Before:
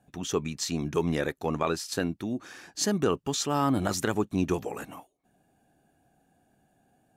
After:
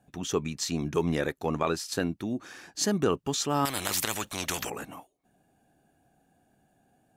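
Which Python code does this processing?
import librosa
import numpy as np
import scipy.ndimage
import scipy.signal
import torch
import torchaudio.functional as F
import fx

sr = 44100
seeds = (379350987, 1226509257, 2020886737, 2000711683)

y = fx.spectral_comp(x, sr, ratio=4.0, at=(3.65, 4.7))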